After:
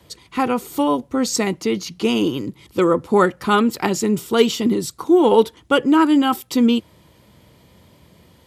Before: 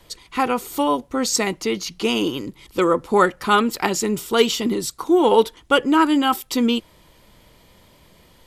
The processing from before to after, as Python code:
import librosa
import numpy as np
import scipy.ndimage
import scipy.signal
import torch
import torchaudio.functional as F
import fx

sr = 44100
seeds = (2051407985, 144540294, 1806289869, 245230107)

y = scipy.signal.sosfilt(scipy.signal.butter(4, 71.0, 'highpass', fs=sr, output='sos'), x)
y = fx.low_shelf(y, sr, hz=380.0, db=8.5)
y = y * 10.0 ** (-2.0 / 20.0)